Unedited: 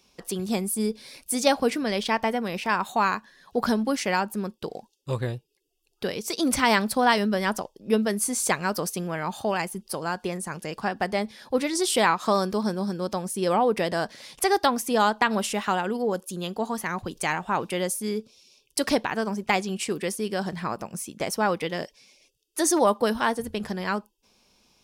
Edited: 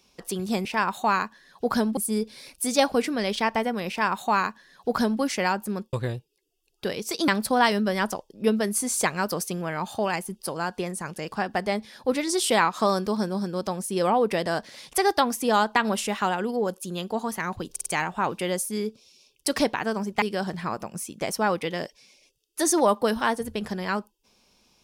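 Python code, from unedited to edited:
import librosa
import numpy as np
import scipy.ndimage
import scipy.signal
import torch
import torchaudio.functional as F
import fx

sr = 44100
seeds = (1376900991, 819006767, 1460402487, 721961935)

y = fx.edit(x, sr, fx.duplicate(start_s=2.57, length_s=1.32, to_s=0.65),
    fx.cut(start_s=4.61, length_s=0.51),
    fx.cut(start_s=6.47, length_s=0.27),
    fx.stutter(start_s=17.17, slice_s=0.05, count=4),
    fx.cut(start_s=19.53, length_s=0.68), tone=tone)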